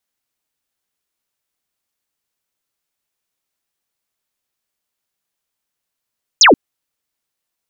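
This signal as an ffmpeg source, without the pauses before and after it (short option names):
-f lavfi -i "aevalsrc='0.631*clip(t/0.002,0,1)*clip((0.13-t)/0.002,0,1)*sin(2*PI*7300*0.13/log(220/7300)*(exp(log(220/7300)*t/0.13)-1))':d=0.13:s=44100"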